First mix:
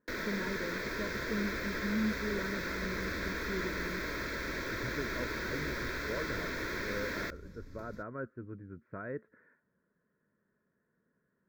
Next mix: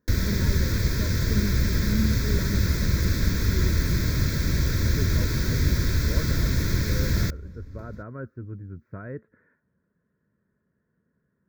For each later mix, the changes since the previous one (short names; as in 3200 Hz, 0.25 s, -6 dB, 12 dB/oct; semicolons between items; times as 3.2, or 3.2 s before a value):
first sound: remove three-band isolator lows -18 dB, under 290 Hz, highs -16 dB, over 3000 Hz; master: add bell 76 Hz +13.5 dB 2.5 oct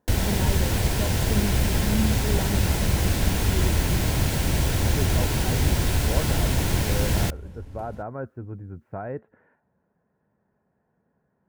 master: remove fixed phaser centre 2900 Hz, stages 6